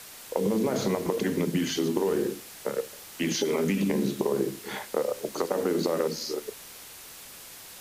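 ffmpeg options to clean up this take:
ffmpeg -i in.wav -af "afwtdn=0.0063" out.wav

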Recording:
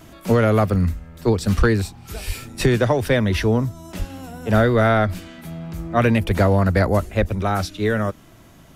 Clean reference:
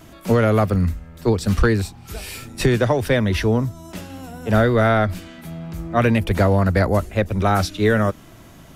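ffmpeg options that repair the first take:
ffmpeg -i in.wav -filter_complex "[0:a]asplit=3[link_01][link_02][link_03];[link_01]afade=type=out:start_time=2.26:duration=0.02[link_04];[link_02]highpass=frequency=140:width=0.5412,highpass=frequency=140:width=1.3066,afade=type=in:start_time=2.26:duration=0.02,afade=type=out:start_time=2.38:duration=0.02[link_05];[link_03]afade=type=in:start_time=2.38:duration=0.02[link_06];[link_04][link_05][link_06]amix=inputs=3:normalize=0,asplit=3[link_07][link_08][link_09];[link_07]afade=type=out:start_time=3.98:duration=0.02[link_10];[link_08]highpass=frequency=140:width=0.5412,highpass=frequency=140:width=1.3066,afade=type=in:start_time=3.98:duration=0.02,afade=type=out:start_time=4.1:duration=0.02[link_11];[link_09]afade=type=in:start_time=4.1:duration=0.02[link_12];[link_10][link_11][link_12]amix=inputs=3:normalize=0,asplit=3[link_13][link_14][link_15];[link_13]afade=type=out:start_time=7.19:duration=0.02[link_16];[link_14]highpass=frequency=140:width=0.5412,highpass=frequency=140:width=1.3066,afade=type=in:start_time=7.19:duration=0.02,afade=type=out:start_time=7.31:duration=0.02[link_17];[link_15]afade=type=in:start_time=7.31:duration=0.02[link_18];[link_16][link_17][link_18]amix=inputs=3:normalize=0,asetnsamples=nb_out_samples=441:pad=0,asendcmd='7.35 volume volume 3.5dB',volume=0dB" out.wav

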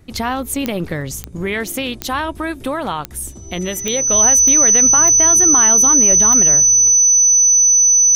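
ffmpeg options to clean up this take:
ffmpeg -i in.wav -af "adeclick=threshold=4,bandreject=frequency=6000:width=30" out.wav

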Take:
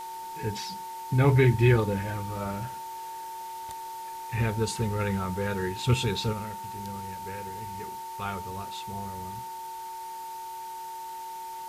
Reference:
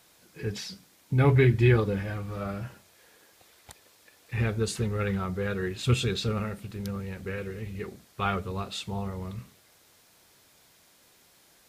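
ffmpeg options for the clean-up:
ffmpeg -i in.wav -af "bandreject=frequency=369.6:width_type=h:width=4,bandreject=frequency=739.2:width_type=h:width=4,bandreject=frequency=1108.8:width_type=h:width=4,bandreject=frequency=1478.4:width_type=h:width=4,bandreject=frequency=1848:width_type=h:width=4,bandreject=frequency=900:width=30,afwtdn=0.0035,asetnsamples=nb_out_samples=441:pad=0,asendcmd='6.33 volume volume 6.5dB',volume=0dB" out.wav

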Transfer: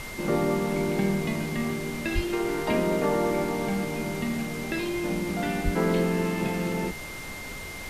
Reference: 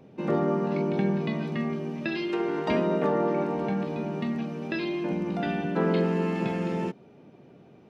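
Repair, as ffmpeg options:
ffmpeg -i in.wav -filter_complex "[0:a]bandreject=frequency=2100:width=30,asplit=3[link_01][link_02][link_03];[link_01]afade=type=out:start_time=2.14:duration=0.02[link_04];[link_02]highpass=frequency=140:width=0.5412,highpass=frequency=140:width=1.3066,afade=type=in:start_time=2.14:duration=0.02,afade=type=out:start_time=2.26:duration=0.02[link_05];[link_03]afade=type=in:start_time=2.26:duration=0.02[link_06];[link_04][link_05][link_06]amix=inputs=3:normalize=0,asplit=3[link_07][link_08][link_09];[link_07]afade=type=out:start_time=5.64:duration=0.02[link_10];[link_08]highpass=frequency=140:width=0.5412,highpass=frequency=140:width=1.3066,afade=type=in:start_time=5.64:duration=0.02,afade=type=out:start_time=5.76:duration=0.02[link_11];[link_09]afade=type=in:start_time=5.76:duration=0.02[link_12];[link_10][link_11][link_12]amix=inputs=3:normalize=0,afftdn=noise_reduction=15:noise_floor=-37" out.wav

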